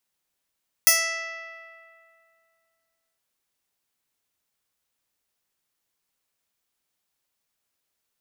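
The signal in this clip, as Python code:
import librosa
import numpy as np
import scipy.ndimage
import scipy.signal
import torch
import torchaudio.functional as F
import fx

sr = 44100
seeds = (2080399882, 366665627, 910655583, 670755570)

y = fx.pluck(sr, length_s=2.31, note=76, decay_s=2.49, pick=0.16, brightness='bright')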